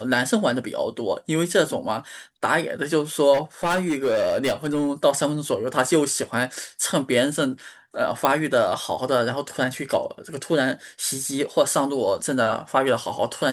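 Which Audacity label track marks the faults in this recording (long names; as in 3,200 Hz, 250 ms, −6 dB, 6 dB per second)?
3.330000	4.880000	clipping −18 dBFS
8.250000	8.250000	click −6 dBFS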